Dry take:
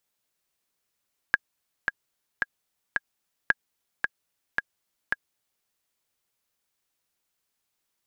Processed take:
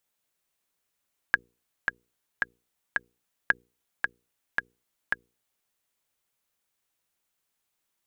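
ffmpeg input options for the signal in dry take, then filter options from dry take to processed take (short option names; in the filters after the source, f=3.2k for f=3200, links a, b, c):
-f lavfi -i "aevalsrc='pow(10,(-6-5*gte(mod(t,4*60/111),60/111))/20)*sin(2*PI*1640*mod(t,60/111))*exp(-6.91*mod(t,60/111)/0.03)':d=4.32:s=44100"
-af "equalizer=f=4.9k:t=o:w=0.56:g=-3,bandreject=f=60:t=h:w=6,bandreject=f=120:t=h:w=6,bandreject=f=180:t=h:w=6,bandreject=f=240:t=h:w=6,bandreject=f=300:t=h:w=6,bandreject=f=360:t=h:w=6,bandreject=f=420:t=h:w=6,bandreject=f=480:t=h:w=6"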